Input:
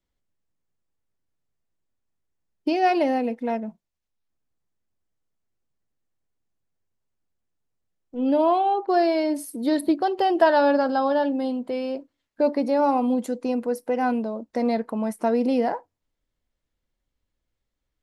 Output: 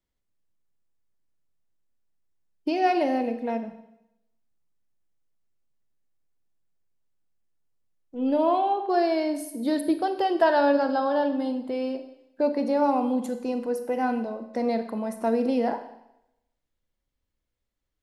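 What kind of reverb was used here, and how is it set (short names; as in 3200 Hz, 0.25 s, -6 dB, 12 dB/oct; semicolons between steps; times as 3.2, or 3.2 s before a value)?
Schroeder reverb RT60 0.83 s, combs from 31 ms, DRR 8.5 dB; gain -3 dB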